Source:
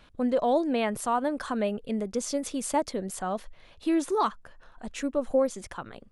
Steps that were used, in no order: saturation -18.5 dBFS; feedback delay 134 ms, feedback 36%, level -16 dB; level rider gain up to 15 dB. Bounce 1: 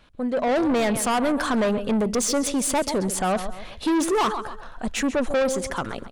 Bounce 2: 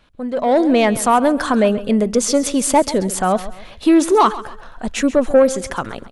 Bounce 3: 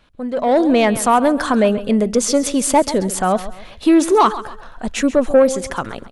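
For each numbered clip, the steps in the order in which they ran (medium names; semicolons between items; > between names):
feedback delay > level rider > saturation; saturation > feedback delay > level rider; feedback delay > saturation > level rider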